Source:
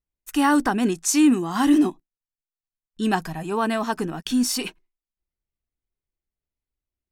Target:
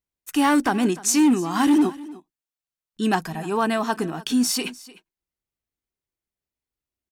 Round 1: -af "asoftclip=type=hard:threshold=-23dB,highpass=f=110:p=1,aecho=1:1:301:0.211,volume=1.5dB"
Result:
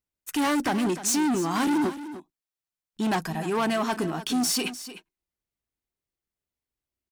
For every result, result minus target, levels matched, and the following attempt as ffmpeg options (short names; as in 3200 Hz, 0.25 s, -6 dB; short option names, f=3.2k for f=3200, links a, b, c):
hard clip: distortion +11 dB; echo-to-direct +6 dB
-af "asoftclip=type=hard:threshold=-14dB,highpass=f=110:p=1,aecho=1:1:301:0.211,volume=1.5dB"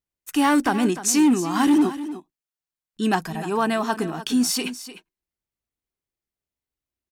echo-to-direct +6 dB
-af "asoftclip=type=hard:threshold=-14dB,highpass=f=110:p=1,aecho=1:1:301:0.106,volume=1.5dB"